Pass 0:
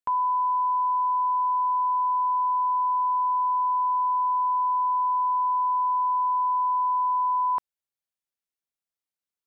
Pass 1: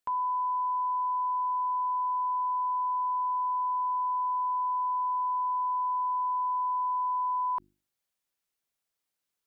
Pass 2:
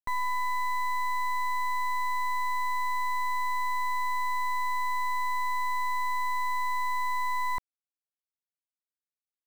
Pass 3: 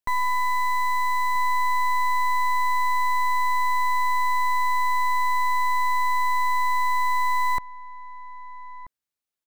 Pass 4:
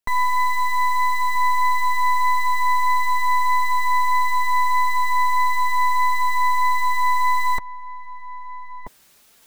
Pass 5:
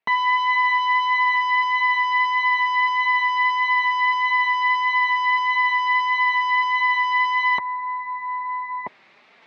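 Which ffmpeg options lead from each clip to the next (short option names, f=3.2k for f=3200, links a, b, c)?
-af "bandreject=f=50:t=h:w=6,bandreject=f=100:t=h:w=6,bandreject=f=150:t=h:w=6,bandreject=f=200:t=h:w=6,bandreject=f=250:t=h:w=6,bandreject=f=300:t=h:w=6,bandreject=f=350:t=h:w=6,alimiter=level_in=8.5dB:limit=-24dB:level=0:latency=1,volume=-8.5dB,volume=6.5dB"
-af "acrusher=bits=5:dc=4:mix=0:aa=0.000001,volume=4dB"
-filter_complex "[0:a]asplit=2[a][b];[b]adelay=1283,volume=-14dB,highshelf=f=4k:g=-28.9[c];[a][c]amix=inputs=2:normalize=0,volume=6dB"
-af "areverse,acompressor=mode=upward:threshold=-32dB:ratio=2.5,areverse,flanger=delay=4.2:depth=1.2:regen=-33:speed=1.6:shape=triangular,volume=7dB"
-af "aeval=exprs='0.355*(cos(1*acos(clip(val(0)/0.355,-1,1)))-cos(1*PI/2))+0.141*(cos(5*acos(clip(val(0)/0.355,-1,1)))-cos(5*PI/2))':c=same,highpass=240,equalizer=f=290:t=q:w=4:g=-5,equalizer=f=480:t=q:w=4:g=-4,equalizer=f=1.5k:t=q:w=4:g=-5,equalizer=f=2.1k:t=q:w=4:g=4,equalizer=f=3.1k:t=q:w=4:g=-6,lowpass=f=3.1k:w=0.5412,lowpass=f=3.1k:w=1.3066"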